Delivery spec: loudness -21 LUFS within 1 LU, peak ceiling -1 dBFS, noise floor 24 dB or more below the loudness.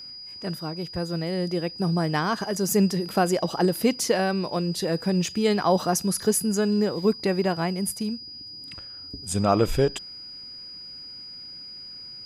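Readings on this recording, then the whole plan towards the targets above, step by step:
steady tone 4.9 kHz; tone level -38 dBFS; loudness -25.0 LUFS; peak level -8.5 dBFS; loudness target -21.0 LUFS
-> band-stop 4.9 kHz, Q 30; trim +4 dB

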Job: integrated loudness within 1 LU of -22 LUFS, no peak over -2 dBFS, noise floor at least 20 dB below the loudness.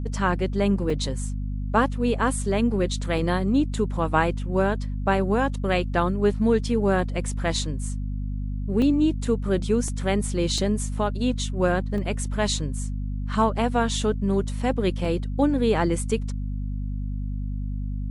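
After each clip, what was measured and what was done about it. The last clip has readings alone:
dropouts 7; longest dropout 2.3 ms; hum 50 Hz; highest harmonic 250 Hz; hum level -26 dBFS; loudness -25.0 LUFS; peak level -6.5 dBFS; loudness target -22.0 LUFS
-> interpolate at 0.90/3.18/8.82/9.88/10.58/11.98/15.05 s, 2.3 ms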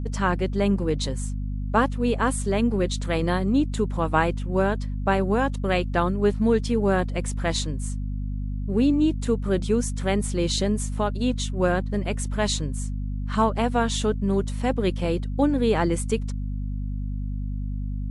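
dropouts 0; hum 50 Hz; highest harmonic 250 Hz; hum level -26 dBFS
-> de-hum 50 Hz, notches 5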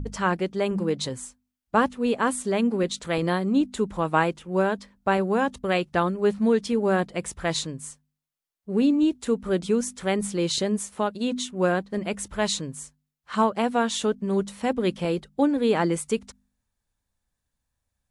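hum not found; loudness -25.5 LUFS; peak level -6.5 dBFS; loudness target -22.0 LUFS
-> trim +3.5 dB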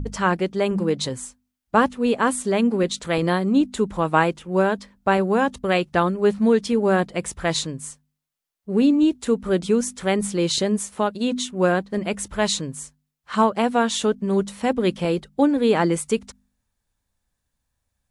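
loudness -22.0 LUFS; peak level -3.0 dBFS; noise floor -79 dBFS

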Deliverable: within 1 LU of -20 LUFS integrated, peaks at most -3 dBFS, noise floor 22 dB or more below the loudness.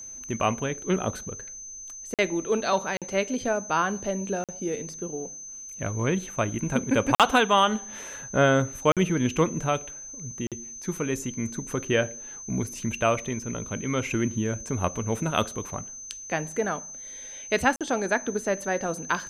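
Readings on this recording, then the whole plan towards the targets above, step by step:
dropouts 7; longest dropout 47 ms; steady tone 6.2 kHz; tone level -38 dBFS; loudness -27.0 LUFS; peak level -7.0 dBFS; loudness target -20.0 LUFS
-> interpolate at 2.14/2.97/4.44/7.15/8.92/10.47/17.76 s, 47 ms; band-stop 6.2 kHz, Q 30; trim +7 dB; peak limiter -3 dBFS

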